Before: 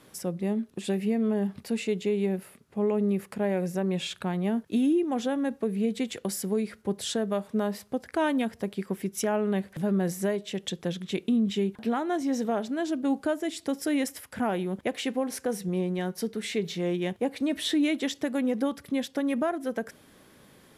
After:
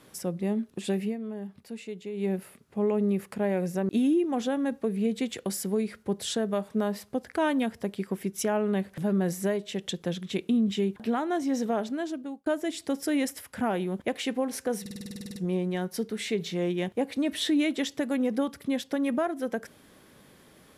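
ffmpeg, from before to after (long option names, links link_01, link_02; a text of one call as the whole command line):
ffmpeg -i in.wav -filter_complex "[0:a]asplit=16[link_01][link_02][link_03][link_04][link_05][link_06][link_07][link_08][link_09][link_10][link_11][link_12][link_13][link_14][link_15][link_16];[link_01]atrim=end=1.17,asetpts=PTS-STARTPTS,afade=type=out:start_time=1.01:duration=0.16:silence=0.316228[link_17];[link_02]atrim=start=1.17:end=2.13,asetpts=PTS-STARTPTS,volume=-10dB[link_18];[link_03]atrim=start=2.13:end=3.892,asetpts=PTS-STARTPTS,afade=type=in:duration=0.16:silence=0.316228[link_19];[link_04]atrim=start=4.678:end=13.25,asetpts=PTS-STARTPTS,afade=type=out:start_time=7.992:duration=0.58[link_20];[link_05]atrim=start=13.25:end=15.652,asetpts=PTS-STARTPTS,afade=type=in:duration=0.004:curve=hsin[link_21];[link_06]atrim=start=15.598:end=15.652[link_22];[link_07]atrim=start=15.598:end=15.652[link_23];[link_08]atrim=start=15.598:end=15.652[link_24];[link_09]atrim=start=15.598:end=15.652[link_25];[link_10]atrim=start=15.598:end=15.652[link_26];[link_11]atrim=start=15.598:end=15.652[link_27];[link_12]atrim=start=15.598:end=15.652[link_28];[link_13]atrim=start=15.598:end=15.652[link_29];[link_14]atrim=start=15.598:end=15.652[link_30];[link_15]atrim=start=15.598:end=15.652[link_31];[link_16]atrim=start=15.598[link_32];[link_17][link_18][link_19]concat=n=3:v=0:a=1[link_33];[link_20][link_21]concat=n=2:v=0:a=1[link_34];[link_33][link_34]acrossfade=duration=0.004:curve1=hsin:curve2=hsin[link_35];[link_35][link_22]acrossfade=duration=0.004:curve1=hsin:curve2=hsin[link_36];[link_36][link_23]acrossfade=duration=0.004:curve1=hsin:curve2=hsin[link_37];[link_37][link_24]acrossfade=duration=0.004:curve1=hsin:curve2=hsin[link_38];[link_38][link_25]acrossfade=duration=0.004:curve1=hsin:curve2=hsin[link_39];[link_39][link_26]acrossfade=duration=0.004:curve1=hsin:curve2=hsin[link_40];[link_40][link_27]acrossfade=duration=0.004:curve1=hsin:curve2=hsin[link_41];[link_41][link_28]acrossfade=duration=0.004:curve1=hsin:curve2=hsin[link_42];[link_42][link_29]acrossfade=duration=0.004:curve1=hsin:curve2=hsin[link_43];[link_43][link_30]acrossfade=duration=0.004:curve1=hsin:curve2=hsin[link_44];[link_44][link_31]acrossfade=duration=0.004:curve1=hsin:curve2=hsin[link_45];[link_45][link_32]acrossfade=duration=0.004:curve1=hsin:curve2=hsin" out.wav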